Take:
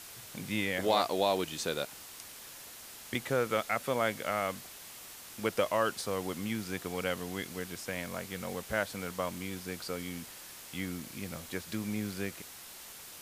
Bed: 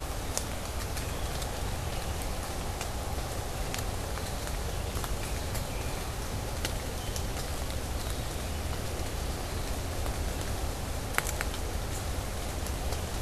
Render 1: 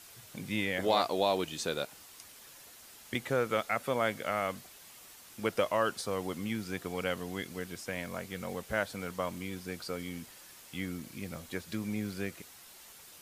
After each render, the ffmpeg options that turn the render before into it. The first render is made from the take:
ffmpeg -i in.wav -af "afftdn=noise_reduction=6:noise_floor=-49" out.wav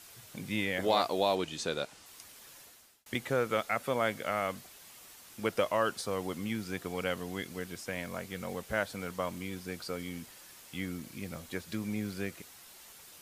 ffmpeg -i in.wav -filter_complex "[0:a]asettb=1/sr,asplit=3[link_01][link_02][link_03];[link_01]atrim=end=1.354[link_04];[link_02]atrim=start=1.35:end=2.06,asetpts=PTS-STARTPTS,afade=type=in:duration=0.004:curve=qsin,afade=type=out:start_time=0.706:duration=0.004:curve=qsin,lowpass=8600[link_05];[link_03]atrim=start=2.056[link_06];[link_04][link_05]acrossfade=duration=0.004:curve1=hsin:curve2=qsin[link_07];[link_07][link_06]acrossfade=duration=0.004:curve1=qsin:curve2=hsin,asplit=2[link_08][link_09];[link_08]atrim=end=3.06,asetpts=PTS-STARTPTS,afade=type=out:start_time=2.59:duration=0.47[link_10];[link_09]atrim=start=3.06,asetpts=PTS-STARTPTS,afade=type=in:duration=0.004:curve=hsin[link_11];[link_10][link_11]concat=n=2:v=0:a=1" out.wav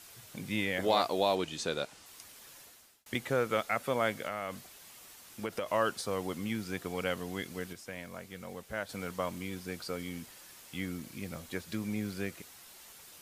ffmpeg -i in.wav -filter_complex "[0:a]asettb=1/sr,asplit=3[link_01][link_02][link_03];[link_01]atrim=end=4.154[link_04];[link_02]atrim=start=4.15:end=5.7,asetpts=PTS-STARTPTS,afade=type=in:duration=0.004:curve=qsin,afade=type=out:start_time=1.546:duration=0.004:curve=qsin,acompressor=threshold=-31dB:ratio=5:attack=3.2:release=140:knee=1:detection=peak[link_05];[link_03]atrim=start=5.696[link_06];[link_04][link_05]acrossfade=duration=0.004:curve1=hsin:curve2=qsin[link_07];[link_07][link_06]acrossfade=duration=0.004:curve1=qsin:curve2=hsin,asplit=3[link_08][link_09][link_10];[link_08]atrim=end=7.732[link_11];[link_09]atrim=start=7.728:end=8.892,asetpts=PTS-STARTPTS,volume=-5.5dB[link_12];[link_10]atrim=start=8.888[link_13];[link_11][link_12]acrossfade=duration=0.004:curve1=hsin:curve2=hsin[link_14];[link_14][link_13]acrossfade=duration=0.004:curve1=hsin:curve2=hsin" out.wav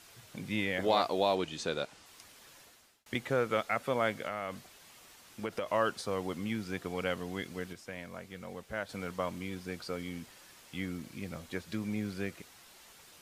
ffmpeg -i in.wav -af "highshelf=frequency=8200:gain=-9.5" out.wav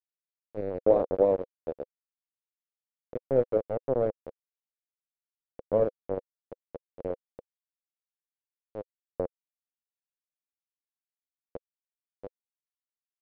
ffmpeg -i in.wav -af "acrusher=bits=3:mix=0:aa=0.000001,lowpass=frequency=510:width_type=q:width=5.2" out.wav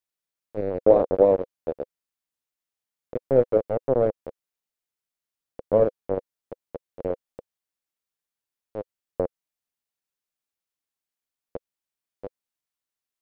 ffmpeg -i in.wav -af "volume=5.5dB" out.wav

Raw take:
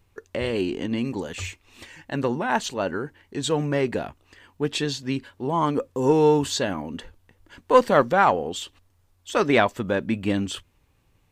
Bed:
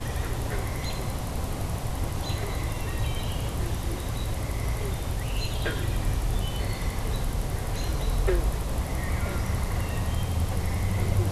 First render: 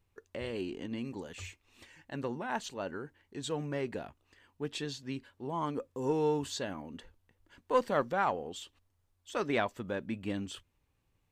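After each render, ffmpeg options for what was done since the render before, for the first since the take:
ffmpeg -i in.wav -af "volume=-12dB" out.wav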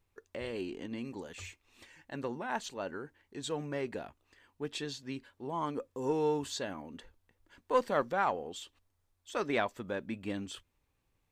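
ffmpeg -i in.wav -af "equalizer=frequency=110:width_type=o:width=2.1:gain=-4,bandreject=frequency=2900:width=29" out.wav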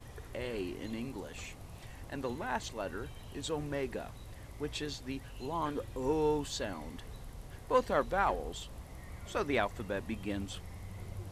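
ffmpeg -i in.wav -i bed.wav -filter_complex "[1:a]volume=-19dB[link_01];[0:a][link_01]amix=inputs=2:normalize=0" out.wav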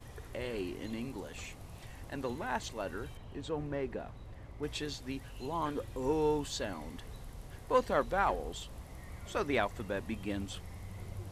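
ffmpeg -i in.wav -filter_complex "[0:a]asettb=1/sr,asplit=3[link_01][link_02][link_03];[link_01]atrim=end=3.174[link_04];[link_02]atrim=start=3.17:end=4.63,asetpts=PTS-STARTPTS,afade=type=in:duration=0.004:curve=qsin,afade=type=out:start_time=1.456:duration=0.004:curve=qsin,lowpass=frequency=1700:poles=1[link_05];[link_03]atrim=start=4.626[link_06];[link_04][link_05]acrossfade=duration=0.004:curve1=hsin:curve2=qsin[link_07];[link_07][link_06]acrossfade=duration=0.004:curve1=qsin:curve2=hsin" out.wav

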